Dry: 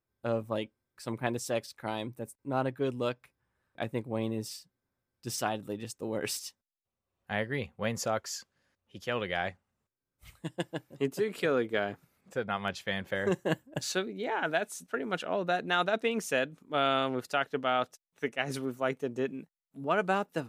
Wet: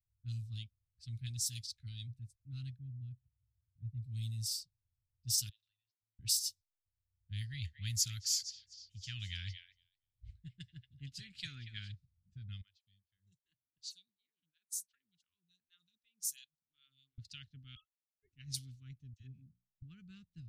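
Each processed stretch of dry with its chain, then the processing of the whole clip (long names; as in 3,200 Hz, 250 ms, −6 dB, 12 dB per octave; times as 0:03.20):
0:02.76–0:04.03: one scale factor per block 7 bits + resonant band-pass 110 Hz, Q 0.63
0:05.49–0:06.19: inverse Chebyshev high-pass filter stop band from 470 Hz + high-frequency loss of the air 190 metres + downward compressor 4 to 1, threshold −60 dBFS
0:07.41–0:11.92: parametric band 1,600 Hz +10.5 dB 1.4 octaves + echo through a band-pass that steps 234 ms, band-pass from 2,600 Hz, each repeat 0.7 octaves, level −6.5 dB
0:12.61–0:17.18: first-order pre-emphasis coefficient 0.97 + hollow resonant body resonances 560/990 Hz, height 12 dB, ringing for 20 ms + phaser with staggered stages 2.7 Hz
0:17.75–0:18.33: three sine waves on the formant tracks + double-tracking delay 14 ms −10.5 dB
0:19.13–0:19.82: high-shelf EQ 4,100 Hz +7 dB + mains-hum notches 60/120/180/240/300/360/420 Hz + all-pass dispersion lows, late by 69 ms, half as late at 720 Hz
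whole clip: Chebyshev band-stop filter 100–4,300 Hz, order 3; low-pass that shuts in the quiet parts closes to 480 Hz, open at −40.5 dBFS; level +5.5 dB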